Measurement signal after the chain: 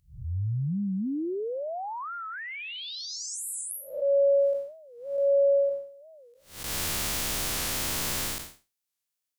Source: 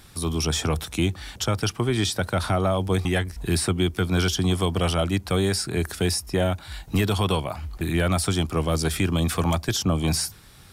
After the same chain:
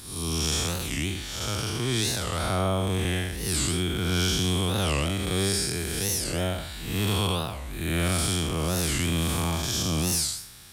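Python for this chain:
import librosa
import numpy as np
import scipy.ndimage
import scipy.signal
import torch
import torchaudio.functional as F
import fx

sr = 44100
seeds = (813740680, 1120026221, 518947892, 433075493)

y = fx.spec_blur(x, sr, span_ms=227.0)
y = fx.high_shelf(y, sr, hz=2400.0, db=10.0)
y = fx.record_warp(y, sr, rpm=45.0, depth_cents=250.0)
y = y * librosa.db_to_amplitude(-1.5)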